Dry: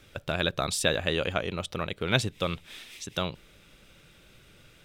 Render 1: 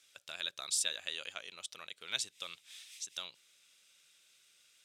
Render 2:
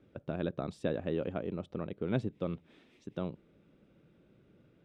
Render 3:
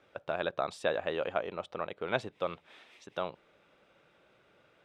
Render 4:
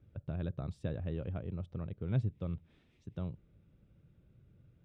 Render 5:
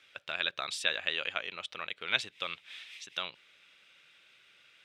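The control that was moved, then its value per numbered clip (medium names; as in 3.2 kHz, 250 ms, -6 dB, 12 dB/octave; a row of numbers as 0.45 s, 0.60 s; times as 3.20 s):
band-pass filter, frequency: 7.3 kHz, 260 Hz, 760 Hz, 100 Hz, 2.5 kHz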